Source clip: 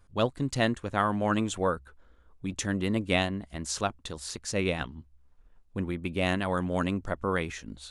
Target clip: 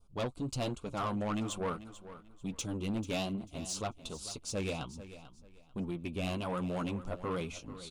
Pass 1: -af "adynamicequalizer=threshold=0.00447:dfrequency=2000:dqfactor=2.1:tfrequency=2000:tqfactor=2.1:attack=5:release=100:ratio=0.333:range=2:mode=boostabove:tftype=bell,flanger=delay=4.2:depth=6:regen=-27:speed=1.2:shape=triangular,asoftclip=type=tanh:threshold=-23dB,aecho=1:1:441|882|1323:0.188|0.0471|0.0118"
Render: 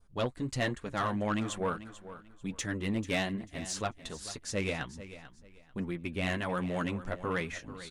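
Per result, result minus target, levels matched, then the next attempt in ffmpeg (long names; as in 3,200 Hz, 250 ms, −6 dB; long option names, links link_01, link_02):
2,000 Hz band +6.5 dB; soft clipping: distortion −5 dB
-af "adynamicequalizer=threshold=0.00447:dfrequency=2000:dqfactor=2.1:tfrequency=2000:tqfactor=2.1:attack=5:release=100:ratio=0.333:range=2:mode=boostabove:tftype=bell,asuperstop=centerf=1800:order=4:qfactor=1.6,flanger=delay=4.2:depth=6:regen=-27:speed=1.2:shape=triangular,asoftclip=type=tanh:threshold=-23dB,aecho=1:1:441|882|1323:0.188|0.0471|0.0118"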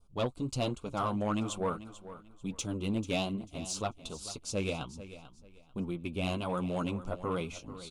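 soft clipping: distortion −7 dB
-af "adynamicequalizer=threshold=0.00447:dfrequency=2000:dqfactor=2.1:tfrequency=2000:tqfactor=2.1:attack=5:release=100:ratio=0.333:range=2:mode=boostabove:tftype=bell,asuperstop=centerf=1800:order=4:qfactor=1.6,flanger=delay=4.2:depth=6:regen=-27:speed=1.2:shape=triangular,asoftclip=type=tanh:threshold=-29.5dB,aecho=1:1:441|882|1323:0.188|0.0471|0.0118"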